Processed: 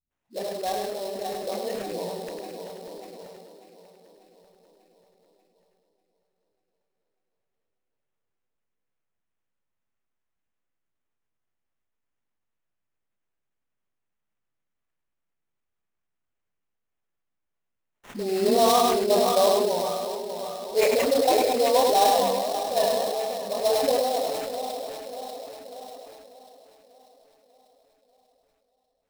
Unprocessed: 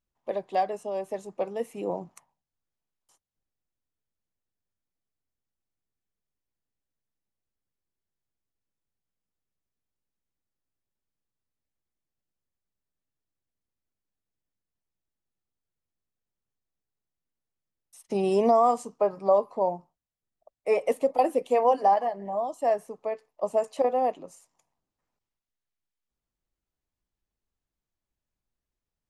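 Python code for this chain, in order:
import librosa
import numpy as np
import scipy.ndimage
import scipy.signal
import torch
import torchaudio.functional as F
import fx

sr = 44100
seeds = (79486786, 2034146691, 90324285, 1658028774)

p1 = fx.reverse_delay_fb(x, sr, ms=296, feedback_pct=71, wet_db=-6.5)
p2 = fx.tilt_eq(p1, sr, slope=1.5)
p3 = fx.spec_gate(p2, sr, threshold_db=-30, keep='strong')
p4 = fx.peak_eq(p3, sr, hz=1000.0, db=-4.5, octaves=0.93)
p5 = fx.doubler(p4, sr, ms=29.0, db=-9.0)
p6 = fx.level_steps(p5, sr, step_db=23)
p7 = p5 + (p6 * librosa.db_to_amplitude(-2.5))
p8 = fx.dispersion(p7, sr, late='highs', ms=109.0, hz=360.0)
p9 = fx.sample_hold(p8, sr, seeds[0], rate_hz=4700.0, jitter_pct=20)
p10 = p9 + fx.echo_single(p9, sr, ms=102, db=-5.5, dry=0)
p11 = fx.sustainer(p10, sr, db_per_s=24.0)
y = p11 * librosa.db_to_amplitude(-2.0)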